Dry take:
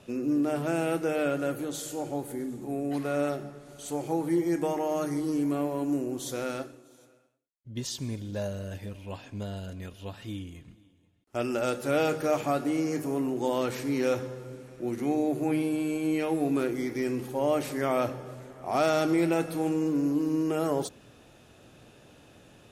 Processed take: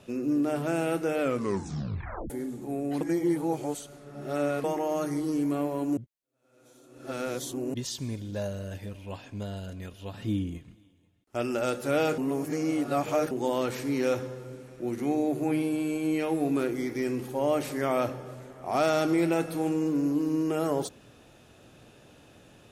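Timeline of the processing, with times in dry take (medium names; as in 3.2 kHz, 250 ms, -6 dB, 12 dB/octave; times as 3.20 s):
1.21 s: tape stop 1.09 s
3.01–4.64 s: reverse
5.97–7.74 s: reverse
10.14–10.58 s: peaking EQ 190 Hz +10 dB 2.9 oct
12.18–13.31 s: reverse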